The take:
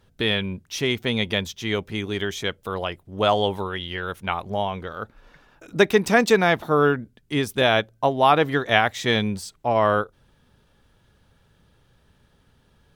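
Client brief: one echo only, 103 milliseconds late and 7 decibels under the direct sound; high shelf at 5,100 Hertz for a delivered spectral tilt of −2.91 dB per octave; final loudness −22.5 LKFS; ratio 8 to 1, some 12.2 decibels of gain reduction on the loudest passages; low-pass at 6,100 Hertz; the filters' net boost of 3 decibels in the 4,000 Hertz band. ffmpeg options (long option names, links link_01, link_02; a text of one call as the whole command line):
ffmpeg -i in.wav -af "lowpass=6100,equalizer=frequency=4000:width_type=o:gain=7.5,highshelf=frequency=5100:gain=-8.5,acompressor=threshold=-24dB:ratio=8,aecho=1:1:103:0.447,volume=6.5dB" out.wav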